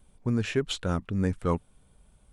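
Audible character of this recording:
background noise floor −62 dBFS
spectral slope −6.0 dB per octave

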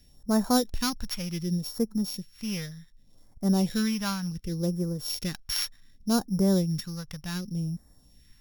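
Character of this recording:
a buzz of ramps at a fixed pitch in blocks of 8 samples
phaser sweep stages 2, 0.67 Hz, lowest notch 340–2,700 Hz

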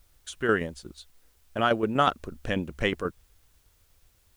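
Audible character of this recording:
tremolo saw down 8.2 Hz, depth 55%
a quantiser's noise floor 12 bits, dither triangular

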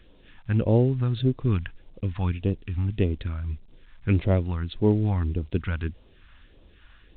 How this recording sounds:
a quantiser's noise floor 10 bits, dither none
phaser sweep stages 2, 1.7 Hz, lowest notch 400–1,600 Hz
A-law companding

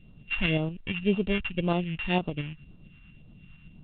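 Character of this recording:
a buzz of ramps at a fixed pitch in blocks of 16 samples
phaser sweep stages 2, 1.9 Hz, lowest notch 450–1,900 Hz
tremolo saw up 8.7 Hz, depth 45%
mu-law

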